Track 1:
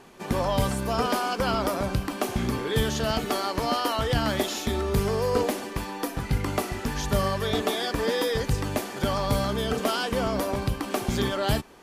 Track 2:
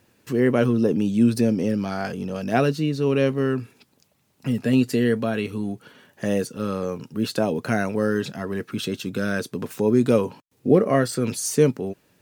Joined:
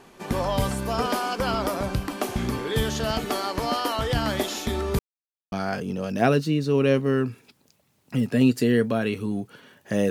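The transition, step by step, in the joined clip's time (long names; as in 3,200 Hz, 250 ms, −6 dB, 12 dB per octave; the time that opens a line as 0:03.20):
track 1
0:04.99–0:05.52: silence
0:05.52: continue with track 2 from 0:01.84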